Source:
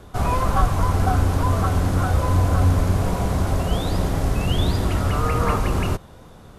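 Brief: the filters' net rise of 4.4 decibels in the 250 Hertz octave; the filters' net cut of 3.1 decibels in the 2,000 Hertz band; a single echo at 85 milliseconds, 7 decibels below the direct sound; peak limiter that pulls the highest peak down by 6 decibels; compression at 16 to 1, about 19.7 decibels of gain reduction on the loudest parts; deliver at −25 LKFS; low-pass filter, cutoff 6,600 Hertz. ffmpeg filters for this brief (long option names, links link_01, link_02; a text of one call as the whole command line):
ffmpeg -i in.wav -af "lowpass=6600,equalizer=frequency=250:width_type=o:gain=6,equalizer=frequency=2000:width_type=o:gain=-4.5,acompressor=threshold=-31dB:ratio=16,alimiter=level_in=4dB:limit=-24dB:level=0:latency=1,volume=-4dB,aecho=1:1:85:0.447,volume=12.5dB" out.wav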